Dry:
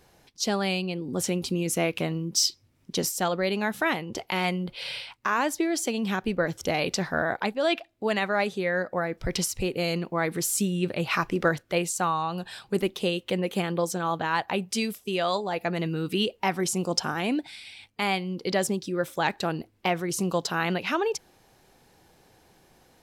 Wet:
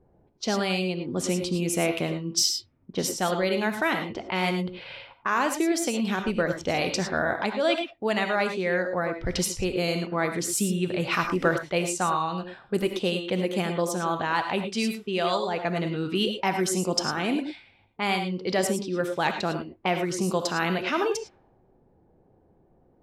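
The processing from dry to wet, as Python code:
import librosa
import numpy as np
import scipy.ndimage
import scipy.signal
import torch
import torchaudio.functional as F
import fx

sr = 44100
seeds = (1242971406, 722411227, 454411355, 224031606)

y = fx.rev_gated(x, sr, seeds[0], gate_ms=130, shape='rising', drr_db=6.5)
y = fx.env_lowpass(y, sr, base_hz=520.0, full_db=-22.0)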